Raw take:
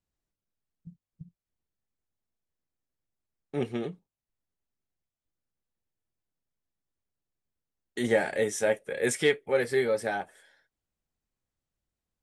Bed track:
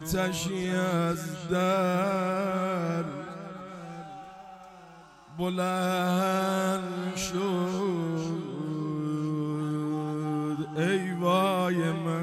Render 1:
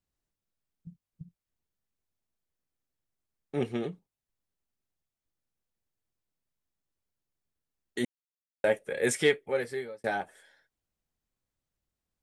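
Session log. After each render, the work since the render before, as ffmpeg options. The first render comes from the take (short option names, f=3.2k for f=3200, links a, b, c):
-filter_complex "[0:a]asplit=4[a][b][c][d];[a]atrim=end=8.05,asetpts=PTS-STARTPTS,afade=t=out:st=8.046:d=0.004:c=hsin[e];[b]atrim=start=8.05:end=8.64,asetpts=PTS-STARTPTS,volume=0[f];[c]atrim=start=8.64:end=10.04,asetpts=PTS-STARTPTS,afade=t=in:d=0.004:c=hsin,afade=t=out:st=0.64:d=0.76[g];[d]atrim=start=10.04,asetpts=PTS-STARTPTS,afade=t=in:d=0.004:c=hsin[h];[e][f][g][h]concat=n=4:v=0:a=1"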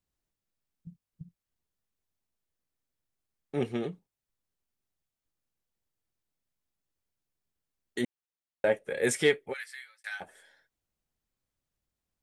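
-filter_complex "[0:a]asettb=1/sr,asplit=3[a][b][c];[a]atrim=end=8.014[d];[b]atrim=start=8.01:end=8.88,asetpts=PTS-STARTPTS,afade=t=in:d=0.004:c=qsin,afade=t=out:st=0.866:d=0.004:c=qsin,highshelf=f=5k:g=-8.5[e];[c]atrim=start=8.876[f];[d][e]acrossfade=d=0.004:c1=hsin:c2=qsin[g];[g][f]acrossfade=d=0.004:c1=qsin:c2=hsin,asplit=3[h][i][j];[h]afade=t=out:st=9.52:d=0.02[k];[i]highpass=f=1.5k:w=0.5412,highpass=f=1.5k:w=1.3066,afade=t=in:st=9.52:d=0.02,afade=t=out:st=10.2:d=0.02[l];[j]afade=t=in:st=10.2:d=0.02[m];[k][l][m]amix=inputs=3:normalize=0"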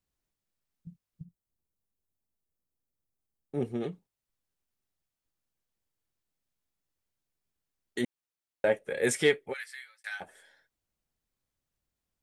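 -filter_complex "[0:a]asplit=3[a][b][c];[a]afade=t=out:st=1.23:d=0.02[d];[b]equalizer=f=2.7k:w=0.43:g=-12,afade=t=in:st=1.23:d=0.02,afade=t=out:st=3.8:d=0.02[e];[c]afade=t=in:st=3.8:d=0.02[f];[d][e][f]amix=inputs=3:normalize=0"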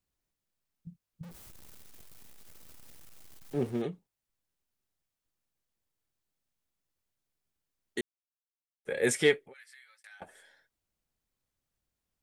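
-filter_complex "[0:a]asettb=1/sr,asplit=3[a][b][c];[a]atrim=end=1.234[d];[b]atrim=start=1.23:end=3.82,asetpts=PTS-STARTPTS,afade=t=in:d=0.004:c=qsin,afade=t=out:st=2.586:d=0.004:c=qsin,aeval=exprs='val(0)+0.5*0.00668*sgn(val(0))':c=same[e];[c]atrim=start=3.816[f];[d][e]acrossfade=d=0.004:c1=hsin:c2=qsin[g];[g][f]acrossfade=d=0.004:c1=qsin:c2=hsin,asettb=1/sr,asplit=3[h][i][j];[h]atrim=end=9.414[k];[i]atrim=start=9.41:end=10.22,asetpts=PTS-STARTPTS,afade=t=in:d=0.004:c=qsin,afade=t=out:st=0.806:d=0.004:c=qsin,acompressor=threshold=-55dB:ratio=3:attack=3.2:release=140:knee=1:detection=peak[l];[j]atrim=start=10.216[m];[k][l]acrossfade=d=0.004:c1=hsin:c2=qsin[n];[n][m]acrossfade=d=0.004:c1=qsin:c2=hsin,asplit=3[o][p][q];[o]atrim=end=8.01,asetpts=PTS-STARTPTS,afade=t=out:st=8.006:d=0.004:c=hsin[r];[p]atrim=start=8.01:end=8.85,asetpts=PTS-STARTPTS,volume=0[s];[q]atrim=start=8.85,asetpts=PTS-STARTPTS,afade=t=in:d=0.004:c=hsin[t];[r][s][t]concat=n=3:v=0:a=1"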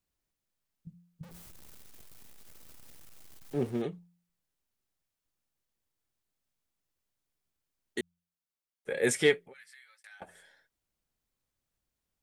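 -af "bandreject=f=86.93:t=h:w=4,bandreject=f=173.86:t=h:w=4"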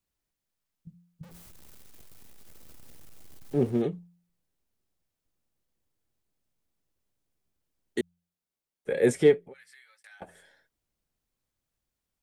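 -filter_complex "[0:a]acrossover=split=670|1000[a][b][c];[a]dynaudnorm=f=740:g=7:m=7dB[d];[c]alimiter=level_in=1.5dB:limit=-24dB:level=0:latency=1:release=440,volume=-1.5dB[e];[d][b][e]amix=inputs=3:normalize=0"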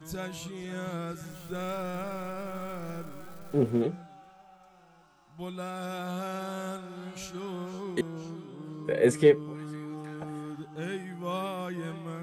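-filter_complex "[1:a]volume=-9dB[a];[0:a][a]amix=inputs=2:normalize=0"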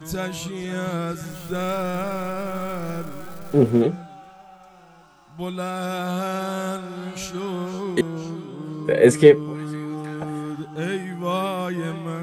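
-af "volume=9dB,alimiter=limit=-1dB:level=0:latency=1"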